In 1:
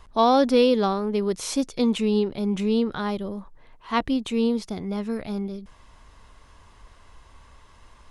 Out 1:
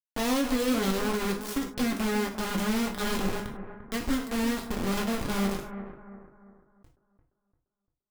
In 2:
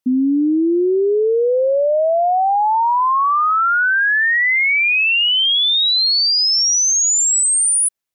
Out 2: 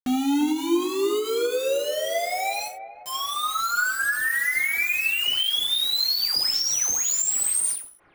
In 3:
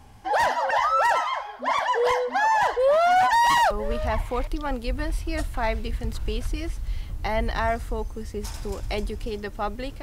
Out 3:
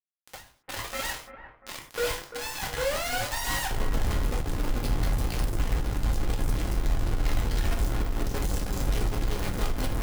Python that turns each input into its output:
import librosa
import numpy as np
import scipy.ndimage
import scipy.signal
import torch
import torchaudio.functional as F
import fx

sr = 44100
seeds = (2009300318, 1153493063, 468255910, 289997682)

p1 = fx.tone_stack(x, sr, knobs='10-0-1')
p2 = fx.rider(p1, sr, range_db=5, speed_s=0.5)
p3 = p1 + (p2 * librosa.db_to_amplitude(-3.0))
p4 = fx.quant_companded(p3, sr, bits=2)
p5 = p4 + fx.echo_bbd(p4, sr, ms=345, stages=4096, feedback_pct=40, wet_db=-11.0, dry=0)
p6 = fx.rev_gated(p5, sr, seeds[0], gate_ms=120, shape='falling', drr_db=1.5)
y = fx.end_taper(p6, sr, db_per_s=120.0)